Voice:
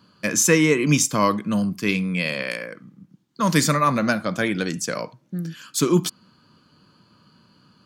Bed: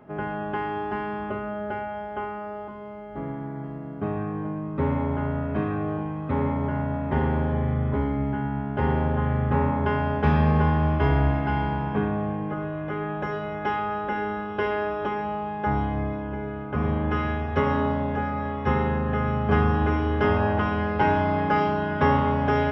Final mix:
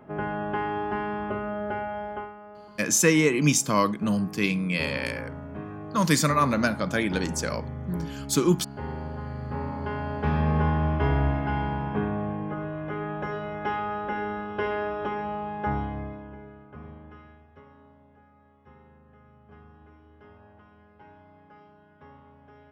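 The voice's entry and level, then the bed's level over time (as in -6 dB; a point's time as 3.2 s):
2.55 s, -3.0 dB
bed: 2.11 s 0 dB
2.35 s -11 dB
9.36 s -11 dB
10.65 s -2.5 dB
15.66 s -2.5 dB
17.73 s -30.5 dB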